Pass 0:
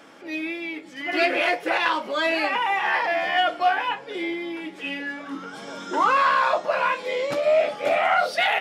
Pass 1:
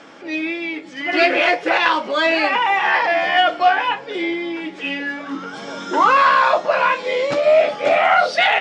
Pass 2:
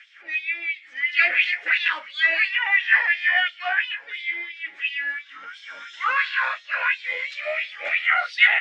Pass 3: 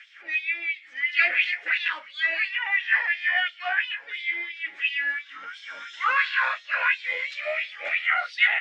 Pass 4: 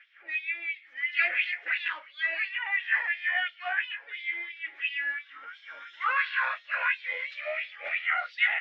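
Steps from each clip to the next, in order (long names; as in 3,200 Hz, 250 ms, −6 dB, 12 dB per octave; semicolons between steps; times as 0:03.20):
low-pass filter 7,200 Hz 24 dB per octave; level +6 dB
auto-filter high-pass sine 2.9 Hz 720–3,900 Hz; drawn EQ curve 130 Hz 0 dB, 940 Hz −21 dB, 1,900 Hz +2 dB, 4,700 Hz −14 dB; level −1.5 dB
speech leveller within 4 dB 2 s; level −3 dB
band-pass filter 340–3,300 Hz; one half of a high-frequency compander decoder only; level −4 dB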